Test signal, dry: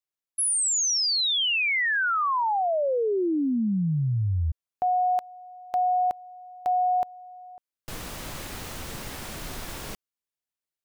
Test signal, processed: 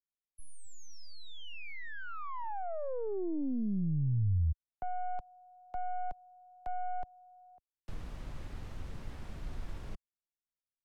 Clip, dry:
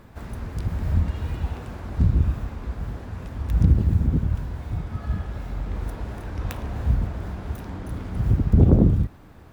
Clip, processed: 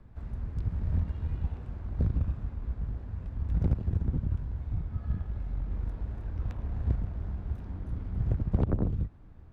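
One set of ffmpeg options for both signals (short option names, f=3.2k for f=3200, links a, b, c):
-filter_complex "[0:a]aeval=exprs='0.708*(cos(1*acos(clip(val(0)/0.708,-1,1)))-cos(1*PI/2))+0.141*(cos(3*acos(clip(val(0)/0.708,-1,1)))-cos(3*PI/2))+0.2*(cos(4*acos(clip(val(0)/0.708,-1,1)))-cos(4*PI/2))+0.112*(cos(6*acos(clip(val(0)/0.708,-1,1)))-cos(6*PI/2))+0.0112*(cos(7*acos(clip(val(0)/0.708,-1,1)))-cos(7*PI/2))':c=same,aemphasis=mode=reproduction:type=bsi,acrossover=split=95|460|940|2100[a][b][c][d][e];[a]acompressor=threshold=-27dB:ratio=4[f];[b]acompressor=threshold=-26dB:ratio=4[g];[c]acompressor=threshold=-36dB:ratio=4[h];[d]acompressor=threshold=-47dB:ratio=4[i];[e]acompressor=threshold=-57dB:ratio=4[j];[f][g][h][i][j]amix=inputs=5:normalize=0,volume=-3.5dB"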